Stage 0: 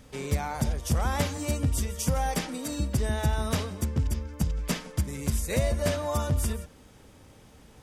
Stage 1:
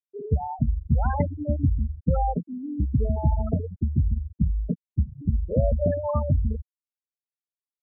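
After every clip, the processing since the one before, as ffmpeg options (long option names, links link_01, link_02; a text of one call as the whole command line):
ffmpeg -i in.wav -af "lowpass=frequency=4500:width=0.5412,lowpass=frequency=4500:width=1.3066,afftfilt=real='re*gte(hypot(re,im),0.126)':imag='im*gte(hypot(re,im),0.126)':win_size=1024:overlap=0.75,volume=4.5dB" out.wav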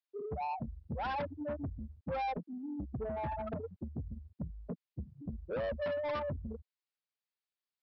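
ffmpeg -i in.wav -af "highpass=frequency=890:poles=1,aresample=11025,asoftclip=type=tanh:threshold=-35.5dB,aresample=44100,volume=3dB" out.wav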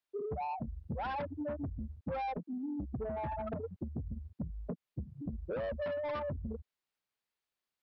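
ffmpeg -i in.wav -af "highshelf=frequency=4900:gain=-8,acompressor=threshold=-42dB:ratio=5,volume=6dB" out.wav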